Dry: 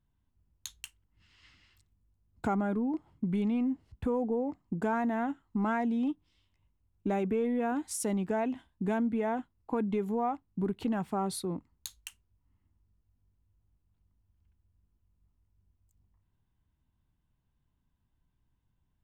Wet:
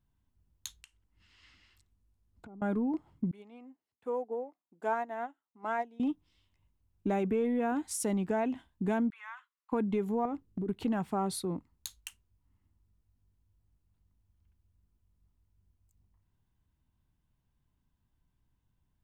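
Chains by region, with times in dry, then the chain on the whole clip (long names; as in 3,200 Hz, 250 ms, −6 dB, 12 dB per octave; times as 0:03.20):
0:00.81–0:02.62: treble cut that deepens with the level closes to 430 Hz, closed at −31 dBFS + parametric band 130 Hz −7.5 dB 0.6 octaves + downward compressor 2.5 to 1, threshold −56 dBFS
0:03.31–0:06.00: high-pass filter 420 Hz + dynamic equaliser 620 Hz, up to +4 dB, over −48 dBFS, Q 1.5 + expander for the loud parts 2.5 to 1, over −40 dBFS
0:09.10–0:09.72: elliptic high-pass filter 1,100 Hz, stop band 50 dB + high-shelf EQ 4,700 Hz −11 dB
0:10.25–0:10.69: low shelf with overshoot 560 Hz +6 dB, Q 3 + downward compressor 16 to 1, threshold −31 dBFS
whole clip: no processing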